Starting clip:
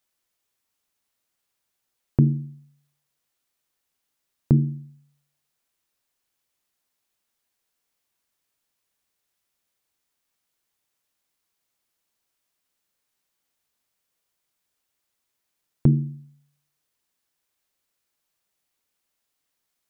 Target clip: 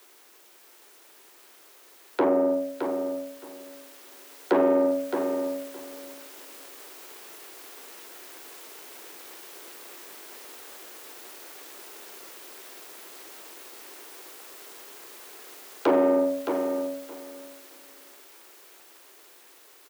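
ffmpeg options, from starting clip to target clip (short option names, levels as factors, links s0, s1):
-filter_complex "[0:a]aemphasis=mode=production:type=50kf,acrossover=split=540[s0][s1];[s0]acompressor=threshold=0.0398:ratio=6[s2];[s2][s1]amix=inputs=2:normalize=0,aeval=exprs='0.237*sin(PI/2*7.08*val(0)/0.237)':c=same,dynaudnorm=f=760:g=11:m=3.55,asplit=2[s3][s4];[s4]highpass=f=720:p=1,volume=10,asoftclip=type=tanh:threshold=0.355[s5];[s3][s5]amix=inputs=2:normalize=0,lowpass=f=1000:p=1,volume=0.501,aeval=exprs='val(0)*sin(2*PI*320*n/s)':c=same,asoftclip=type=tanh:threshold=0.112,afreqshift=98,highpass=f=370:t=q:w=3.4,asplit=2[s6][s7];[s7]aecho=0:1:617|1234|1851:0.447|0.0715|0.0114[s8];[s6][s8]amix=inputs=2:normalize=0,volume=0.841"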